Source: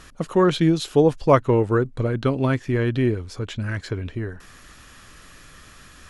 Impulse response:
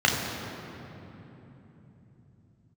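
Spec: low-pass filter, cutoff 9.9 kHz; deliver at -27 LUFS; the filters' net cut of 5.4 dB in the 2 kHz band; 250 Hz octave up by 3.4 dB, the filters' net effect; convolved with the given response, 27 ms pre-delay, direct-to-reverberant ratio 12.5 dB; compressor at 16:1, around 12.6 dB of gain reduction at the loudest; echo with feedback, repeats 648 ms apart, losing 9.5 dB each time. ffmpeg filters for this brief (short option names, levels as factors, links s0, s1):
-filter_complex "[0:a]lowpass=9900,equalizer=f=250:t=o:g=5,equalizer=f=2000:t=o:g=-7.5,acompressor=threshold=0.0794:ratio=16,aecho=1:1:648|1296|1944|2592:0.335|0.111|0.0365|0.012,asplit=2[s0][s1];[1:a]atrim=start_sample=2205,adelay=27[s2];[s1][s2]afir=irnorm=-1:irlink=0,volume=0.0316[s3];[s0][s3]amix=inputs=2:normalize=0,volume=1.12"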